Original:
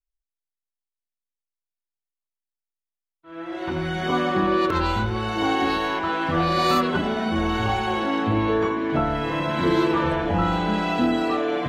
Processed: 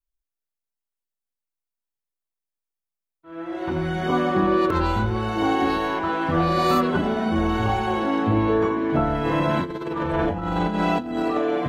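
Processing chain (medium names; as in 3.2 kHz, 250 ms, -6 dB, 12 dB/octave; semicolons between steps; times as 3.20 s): peaking EQ 3.7 kHz -6.5 dB 2.6 oct; 9.25–11.38 s: compressor with a negative ratio -25 dBFS, ratio -0.5; trim +2 dB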